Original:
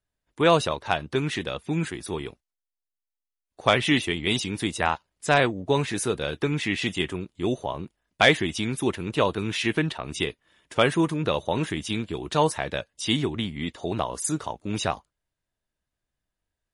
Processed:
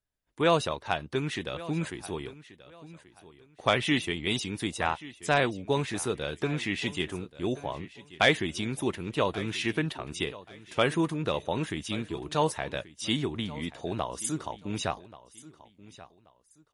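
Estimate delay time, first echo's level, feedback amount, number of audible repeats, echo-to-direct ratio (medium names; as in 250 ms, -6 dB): 1132 ms, -18.0 dB, 27%, 2, -17.5 dB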